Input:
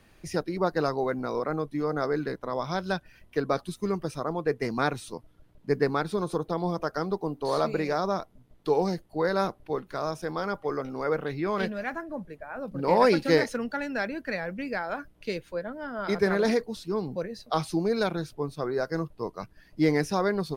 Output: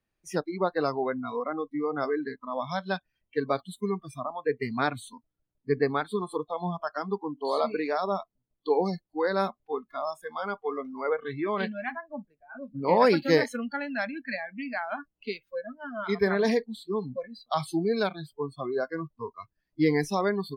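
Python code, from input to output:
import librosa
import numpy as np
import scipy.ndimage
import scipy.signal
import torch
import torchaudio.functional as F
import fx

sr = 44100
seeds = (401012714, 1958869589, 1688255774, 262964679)

y = fx.noise_reduce_blind(x, sr, reduce_db=25)
y = fx.band_shelf(y, sr, hz=1000.0, db=-9.0, octaves=1.0, at=(12.34, 12.85))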